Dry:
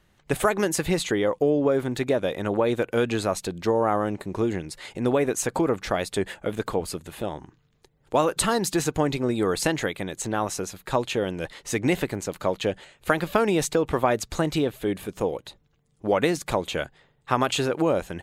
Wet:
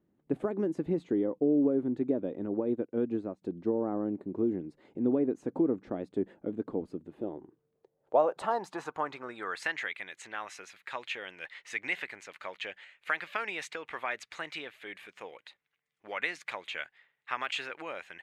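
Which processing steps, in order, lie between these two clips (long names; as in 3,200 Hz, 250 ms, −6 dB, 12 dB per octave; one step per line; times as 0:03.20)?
band-pass filter sweep 280 Hz → 2,100 Hz, 0:07.05–0:09.84
0:02.46–0:03.42: expander for the loud parts 1.5 to 1, over −56 dBFS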